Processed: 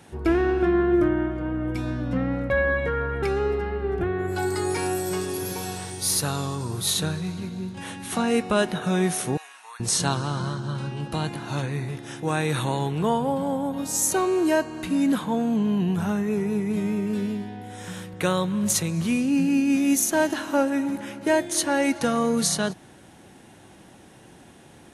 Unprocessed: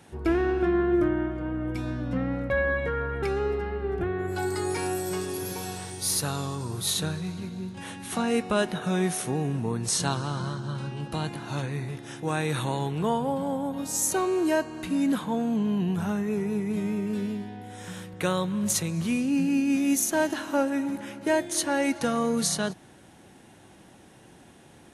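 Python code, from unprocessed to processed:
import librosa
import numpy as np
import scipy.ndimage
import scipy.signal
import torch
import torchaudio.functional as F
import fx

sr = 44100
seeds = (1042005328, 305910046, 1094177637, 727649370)

y = fx.highpass(x, sr, hz=1100.0, slope=24, at=(9.37, 9.8))
y = y * librosa.db_to_amplitude(3.0)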